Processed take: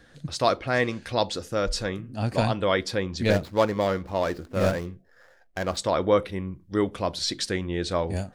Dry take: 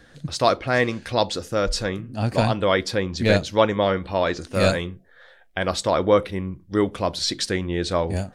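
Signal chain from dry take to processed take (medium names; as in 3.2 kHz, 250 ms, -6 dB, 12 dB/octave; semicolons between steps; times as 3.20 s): 3.30–5.77 s: median filter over 15 samples; trim -3.5 dB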